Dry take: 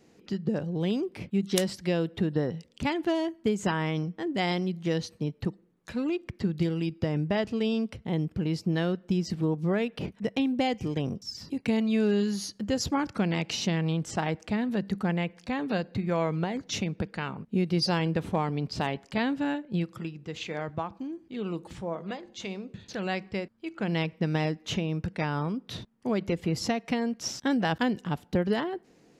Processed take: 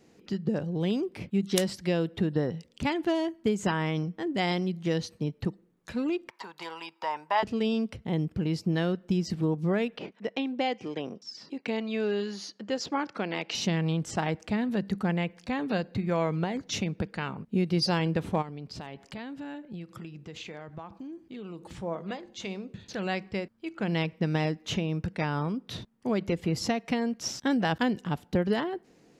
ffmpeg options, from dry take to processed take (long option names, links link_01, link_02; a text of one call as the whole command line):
ffmpeg -i in.wav -filter_complex "[0:a]asettb=1/sr,asplit=3[link_01][link_02][link_03];[link_01]atrim=end=6.294[link_04];[link_02]atrim=start=6.29:end=7.43,asetpts=PTS-STARTPTS,afade=type=in:duration=0.004:curve=qsin,afade=type=out:start_time=1.136:duration=0.004:curve=qsin,highpass=frequency=940:width_type=q:width=11[link_05];[link_03]atrim=start=7.426[link_06];[link_04][link_05]acrossfade=duration=0.004:curve1=hsin:curve2=qsin[link_07];[link_07][link_06]acrossfade=duration=0.004:curve1=qsin:curve2=hsin,asettb=1/sr,asplit=3[link_08][link_09][link_10];[link_08]atrim=end=9.974[link_11];[link_09]atrim=start=9.97:end=13.55,asetpts=PTS-STARTPTS,afade=type=in:duration=0.004:curve=qsin,afade=type=out:start_time=3.576:duration=0.004:curve=qsin,highpass=330,lowpass=4800[link_12];[link_10]atrim=start=13.546[link_13];[link_11][link_12]acrossfade=duration=0.004:curve1=hsin:curve2=qsin[link_14];[link_14][link_13]acrossfade=duration=0.004:curve1=qsin:curve2=hsin,asplit=3[link_15][link_16][link_17];[link_15]afade=type=out:start_time=18.41:duration=0.02[link_18];[link_16]acompressor=threshold=-38dB:ratio=4:attack=3.2:release=140:knee=1:detection=peak,afade=type=in:start_time=18.41:duration=0.02,afade=type=out:start_time=21.79:duration=0.02[link_19];[link_17]afade=type=in:start_time=21.79:duration=0.02[link_20];[link_18][link_19][link_20]amix=inputs=3:normalize=0" out.wav